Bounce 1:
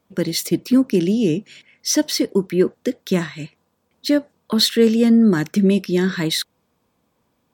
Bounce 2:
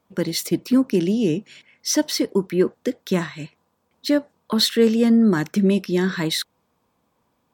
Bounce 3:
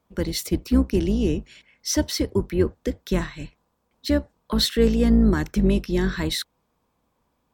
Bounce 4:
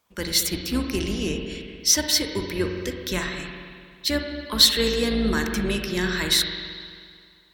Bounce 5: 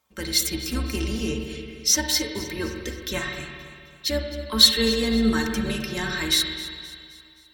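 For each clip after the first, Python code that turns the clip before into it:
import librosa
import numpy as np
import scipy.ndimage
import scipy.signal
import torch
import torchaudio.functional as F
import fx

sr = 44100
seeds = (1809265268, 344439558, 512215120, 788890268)

y1 = fx.peak_eq(x, sr, hz=970.0, db=4.5, octaves=1.1)
y1 = F.gain(torch.from_numpy(y1), -2.5).numpy()
y2 = fx.octave_divider(y1, sr, octaves=2, level_db=-2.0)
y2 = F.gain(torch.from_numpy(y2), -3.0).numpy()
y3 = fx.tilt_shelf(y2, sr, db=-8.5, hz=970.0)
y3 = fx.rev_spring(y3, sr, rt60_s=2.1, pass_ms=(44, 55), chirp_ms=25, drr_db=3.5)
y4 = fx.stiff_resonator(y3, sr, f0_hz=66.0, decay_s=0.23, stiffness=0.03)
y4 = fx.echo_feedback(y4, sr, ms=262, feedback_pct=50, wet_db=-17.0)
y4 = F.gain(torch.from_numpy(y4), 5.5).numpy()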